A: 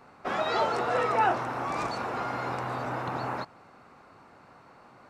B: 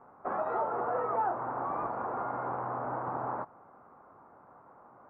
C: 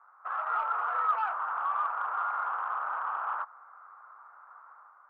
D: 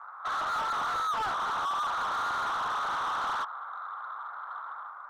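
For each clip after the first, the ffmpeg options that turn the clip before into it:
-af "lowpass=f=1.2k:w=0.5412,lowpass=f=1.2k:w=1.3066,lowshelf=f=420:g=-9.5,acompressor=threshold=-31dB:ratio=2.5,volume=2dB"
-filter_complex "[0:a]asplit=2[a][b];[b]highpass=f=720:p=1,volume=10dB,asoftclip=type=tanh:threshold=-20dB[c];[a][c]amix=inputs=2:normalize=0,lowpass=f=1.8k:p=1,volume=-6dB,dynaudnorm=f=100:g=7:m=6dB,highpass=f=1.3k:t=q:w=3.4,volume=-8.5dB"
-filter_complex "[0:a]asplit=2[a][b];[b]highpass=f=720:p=1,volume=28dB,asoftclip=type=tanh:threshold=-18dB[c];[a][c]amix=inputs=2:normalize=0,lowpass=f=2.3k:p=1,volume=-6dB,volume=-6dB"

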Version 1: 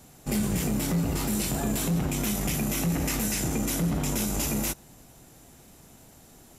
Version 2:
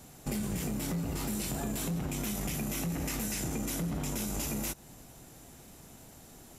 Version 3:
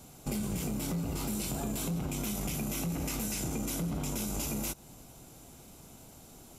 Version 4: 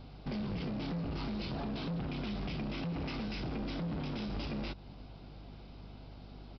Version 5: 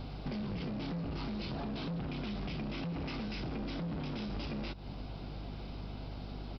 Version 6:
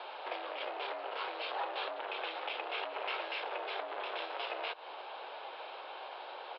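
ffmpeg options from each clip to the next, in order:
-af "acompressor=threshold=-32dB:ratio=4"
-af "equalizer=f=1.8k:w=7.1:g=-11.5"
-af "aeval=exprs='val(0)+0.00316*(sin(2*PI*50*n/s)+sin(2*PI*2*50*n/s)/2+sin(2*PI*3*50*n/s)/3+sin(2*PI*4*50*n/s)/4+sin(2*PI*5*50*n/s)/5)':c=same,aresample=11025,volume=34dB,asoftclip=hard,volume=-34dB,aresample=44100"
-af "acompressor=threshold=-45dB:ratio=6,volume=8dB"
-af "highpass=f=450:t=q:w=0.5412,highpass=f=450:t=q:w=1.307,lowpass=f=3.5k:t=q:w=0.5176,lowpass=f=3.5k:t=q:w=0.7071,lowpass=f=3.5k:t=q:w=1.932,afreqshift=120,volume=8dB"

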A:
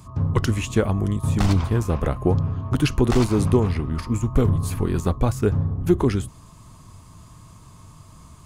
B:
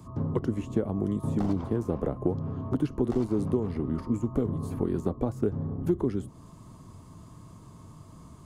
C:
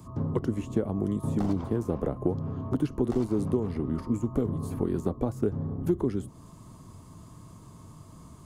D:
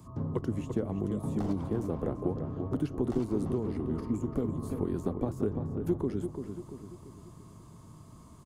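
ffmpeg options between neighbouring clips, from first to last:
-filter_complex "[0:a]equalizer=f=310:t=o:w=2.9:g=11.5,bandreject=f=2.5k:w=17,acrossover=split=170|1100[a][b][c];[a]acompressor=threshold=-27dB:ratio=4[d];[b]acompressor=threshold=-17dB:ratio=4[e];[c]acompressor=threshold=-45dB:ratio=4[f];[d][e][f]amix=inputs=3:normalize=0,volume=-8.5dB"
-af "highshelf=f=6.9k:g=5"
-filter_complex "[0:a]asplit=2[a][b];[b]adelay=341,lowpass=f=2.8k:p=1,volume=-7dB,asplit=2[c][d];[d]adelay=341,lowpass=f=2.8k:p=1,volume=0.47,asplit=2[e][f];[f]adelay=341,lowpass=f=2.8k:p=1,volume=0.47,asplit=2[g][h];[h]adelay=341,lowpass=f=2.8k:p=1,volume=0.47,asplit=2[i][j];[j]adelay=341,lowpass=f=2.8k:p=1,volume=0.47,asplit=2[k][l];[l]adelay=341,lowpass=f=2.8k:p=1,volume=0.47[m];[a][c][e][g][i][k][m]amix=inputs=7:normalize=0,volume=-4dB"

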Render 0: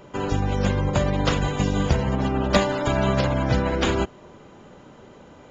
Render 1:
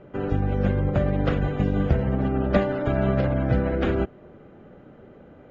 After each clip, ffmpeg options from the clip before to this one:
-af "lowpass=1.6k,equalizer=f=980:w=3.7:g=-12.5"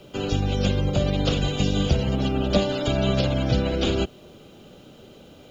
-filter_complex "[0:a]acrossover=split=190|1100[a][b][c];[c]alimiter=level_in=7.5dB:limit=-24dB:level=0:latency=1:release=121,volume=-7.5dB[d];[a][b][d]amix=inputs=3:normalize=0,aexciter=amount=15.8:drive=5.3:freq=2.9k"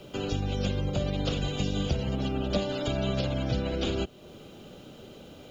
-af "acompressor=threshold=-37dB:ratio=1.5"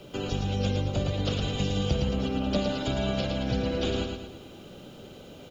-af "aecho=1:1:111|222|333|444|555|666:0.562|0.264|0.124|0.0584|0.0274|0.0129"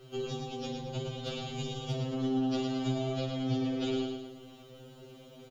-filter_complex "[0:a]asoftclip=type=hard:threshold=-16.5dB,asplit=2[a][b];[b]adelay=49,volume=-10.5dB[c];[a][c]amix=inputs=2:normalize=0,afftfilt=real='re*2.45*eq(mod(b,6),0)':imag='im*2.45*eq(mod(b,6),0)':win_size=2048:overlap=0.75,volume=-4dB"

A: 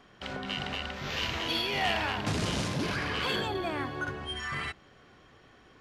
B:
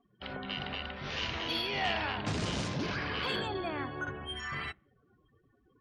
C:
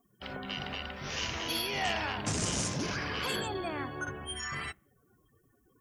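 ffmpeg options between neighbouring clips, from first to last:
-af "afftdn=nr=28:nf=-49,volume=-3dB"
-af "aexciter=amount=5.8:drive=5.4:freq=5.7k"

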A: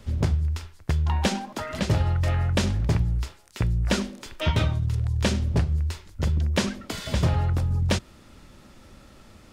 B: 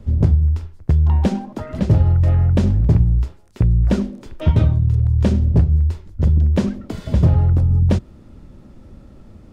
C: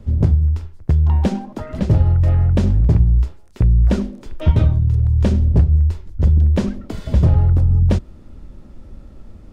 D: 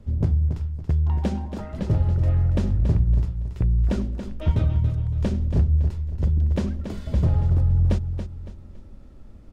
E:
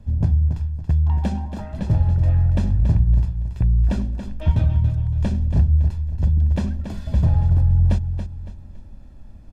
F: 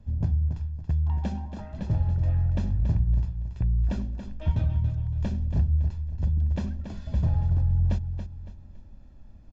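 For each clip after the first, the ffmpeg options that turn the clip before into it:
-af "tiltshelf=f=800:g=9.5"
-af "asubboost=boost=2:cutoff=70"
-af "aecho=1:1:280|560|840|1120:0.355|0.121|0.041|0.0139,volume=-7dB"
-af "aecho=1:1:1.2:0.51"
-af "aresample=16000,aresample=44100,volume=-7dB"

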